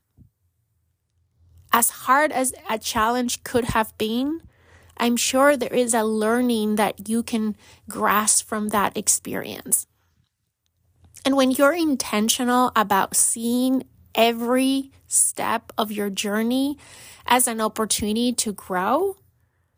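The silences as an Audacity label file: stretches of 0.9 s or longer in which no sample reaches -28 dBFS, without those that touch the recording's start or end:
9.820000	11.160000	silence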